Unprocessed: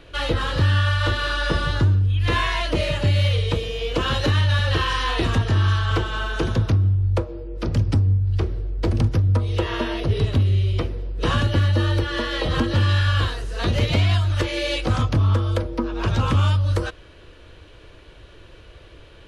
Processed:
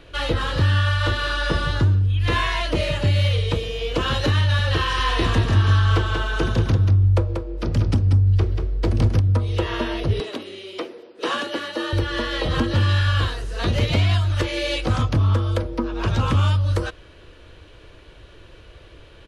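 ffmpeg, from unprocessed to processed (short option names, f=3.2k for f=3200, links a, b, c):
-filter_complex "[0:a]asplit=3[a][b][c];[a]afade=t=out:st=4.96:d=0.02[d];[b]aecho=1:1:187:0.531,afade=t=in:st=4.96:d=0.02,afade=t=out:st=9.19:d=0.02[e];[c]afade=t=in:st=9.19:d=0.02[f];[d][e][f]amix=inputs=3:normalize=0,asettb=1/sr,asplit=3[g][h][i];[g]atrim=end=10.204[j];[h]atrim=start=10.2:end=11.93,asetpts=PTS-STARTPTS,afade=t=in:d=0.004:c=qsin,afade=t=out:st=1.726:d=0.004:c=qsin,highpass=f=290:w=0.5412,highpass=f=290:w=1.3066[k];[i]atrim=start=11.926[l];[j][k]acrossfade=d=0.004:c1=hsin:c2=qsin[m];[m][l]acrossfade=d=0.004:c1=qsin:c2=hsin"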